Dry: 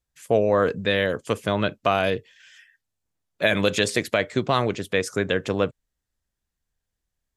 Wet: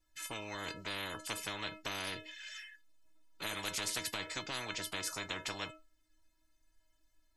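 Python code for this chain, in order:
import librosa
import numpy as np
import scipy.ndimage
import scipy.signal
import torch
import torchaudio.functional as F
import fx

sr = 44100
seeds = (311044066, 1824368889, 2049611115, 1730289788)

y = fx.high_shelf(x, sr, hz=7700.0, db=-7.0)
y = fx.stiff_resonator(y, sr, f0_hz=310.0, decay_s=0.21, stiffness=0.008)
y = fx.spectral_comp(y, sr, ratio=10.0)
y = y * librosa.db_to_amplitude(-1.0)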